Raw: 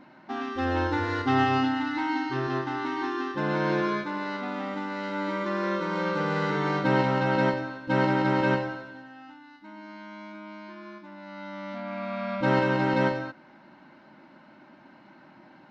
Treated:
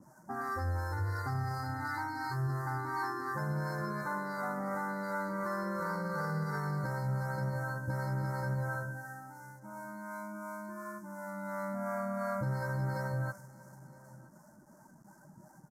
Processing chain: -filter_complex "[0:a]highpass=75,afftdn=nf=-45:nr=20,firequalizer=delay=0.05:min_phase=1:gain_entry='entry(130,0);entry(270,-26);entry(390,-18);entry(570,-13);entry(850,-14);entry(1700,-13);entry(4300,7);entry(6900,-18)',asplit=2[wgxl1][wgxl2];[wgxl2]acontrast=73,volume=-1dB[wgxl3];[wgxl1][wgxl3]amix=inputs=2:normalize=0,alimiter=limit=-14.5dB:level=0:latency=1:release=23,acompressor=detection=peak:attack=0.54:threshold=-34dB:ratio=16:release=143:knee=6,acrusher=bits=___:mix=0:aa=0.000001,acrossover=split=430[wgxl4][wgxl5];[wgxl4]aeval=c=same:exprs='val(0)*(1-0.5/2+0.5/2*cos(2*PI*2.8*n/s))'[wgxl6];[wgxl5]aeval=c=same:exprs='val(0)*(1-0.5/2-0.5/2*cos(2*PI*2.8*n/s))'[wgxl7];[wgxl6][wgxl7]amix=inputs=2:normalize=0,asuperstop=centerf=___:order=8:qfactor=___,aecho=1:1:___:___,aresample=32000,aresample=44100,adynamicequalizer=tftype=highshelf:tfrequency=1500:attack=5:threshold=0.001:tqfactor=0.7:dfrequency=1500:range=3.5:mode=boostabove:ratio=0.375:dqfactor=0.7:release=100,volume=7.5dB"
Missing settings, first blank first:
10, 3100, 0.76, 972, 0.0944